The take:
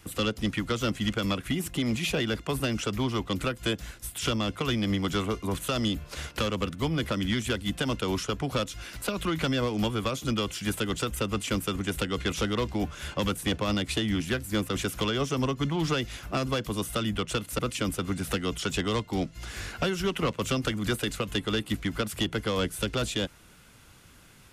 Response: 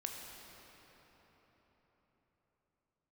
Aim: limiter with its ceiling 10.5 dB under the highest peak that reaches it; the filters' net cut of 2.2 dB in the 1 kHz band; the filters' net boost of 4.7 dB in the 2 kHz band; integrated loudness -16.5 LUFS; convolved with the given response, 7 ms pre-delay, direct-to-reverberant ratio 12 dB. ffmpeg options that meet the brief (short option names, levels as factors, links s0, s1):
-filter_complex "[0:a]equalizer=f=1000:t=o:g=-7,equalizer=f=2000:t=o:g=8.5,alimiter=level_in=1.06:limit=0.0631:level=0:latency=1,volume=0.944,asplit=2[s0][s1];[1:a]atrim=start_sample=2205,adelay=7[s2];[s1][s2]afir=irnorm=-1:irlink=0,volume=0.266[s3];[s0][s3]amix=inputs=2:normalize=0,volume=7.08"